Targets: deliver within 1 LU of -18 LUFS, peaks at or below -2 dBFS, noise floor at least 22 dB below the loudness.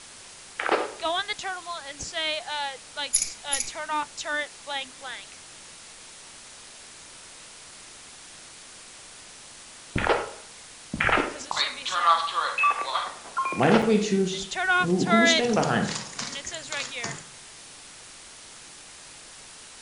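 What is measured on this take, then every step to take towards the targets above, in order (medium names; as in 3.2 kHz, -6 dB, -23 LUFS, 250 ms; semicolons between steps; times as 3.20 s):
dropouts 1; longest dropout 5.3 ms; noise floor -46 dBFS; noise floor target -48 dBFS; loudness -25.5 LUFS; peak level -5.5 dBFS; loudness target -18.0 LUFS
-> interpolate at 13.82 s, 5.3 ms; noise reduction 6 dB, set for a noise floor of -46 dBFS; trim +7.5 dB; peak limiter -2 dBFS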